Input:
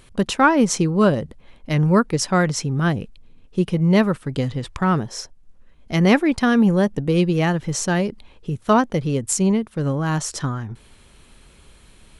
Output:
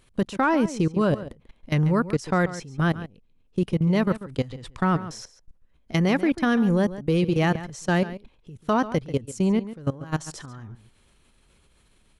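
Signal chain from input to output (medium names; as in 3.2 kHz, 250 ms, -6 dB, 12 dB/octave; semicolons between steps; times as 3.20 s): level held to a coarse grid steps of 20 dB; echo from a far wall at 24 m, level -14 dB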